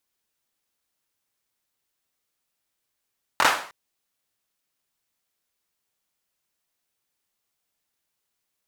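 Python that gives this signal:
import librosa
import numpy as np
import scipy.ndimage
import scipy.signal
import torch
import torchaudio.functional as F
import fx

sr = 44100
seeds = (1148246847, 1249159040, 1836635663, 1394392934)

y = fx.drum_clap(sr, seeds[0], length_s=0.31, bursts=3, spacing_ms=23, hz=1100.0, decay_s=0.47)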